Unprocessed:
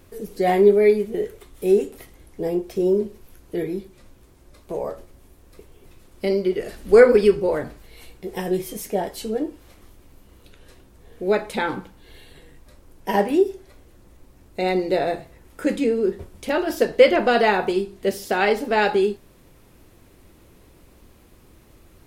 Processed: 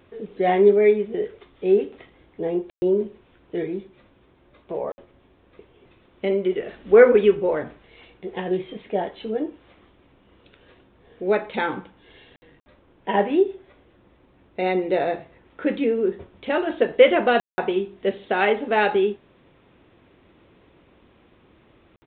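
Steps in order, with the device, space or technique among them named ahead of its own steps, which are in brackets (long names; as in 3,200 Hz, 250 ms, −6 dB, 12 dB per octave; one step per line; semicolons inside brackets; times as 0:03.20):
call with lost packets (high-pass filter 170 Hz 6 dB per octave; downsampling to 8,000 Hz; dropped packets of 60 ms bursts)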